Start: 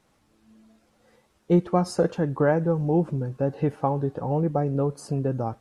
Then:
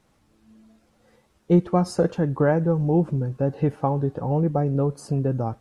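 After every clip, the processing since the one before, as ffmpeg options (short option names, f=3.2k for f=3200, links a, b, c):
-af "lowshelf=f=210:g=5"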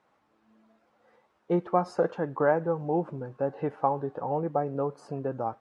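-af "bandpass=f=1k:t=q:w=0.88:csg=0,volume=1dB"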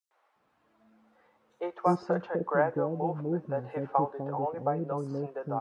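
-filter_complex "[0:a]acrossover=split=450|5700[a][b][c];[b]adelay=110[d];[a]adelay=360[e];[e][d][c]amix=inputs=3:normalize=0"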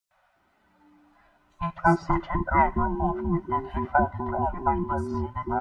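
-af "afftfilt=real='real(if(between(b,1,1008),(2*floor((b-1)/24)+1)*24-b,b),0)':imag='imag(if(between(b,1,1008),(2*floor((b-1)/24)+1)*24-b,b),0)*if(between(b,1,1008),-1,1)':win_size=2048:overlap=0.75,volume=5dB"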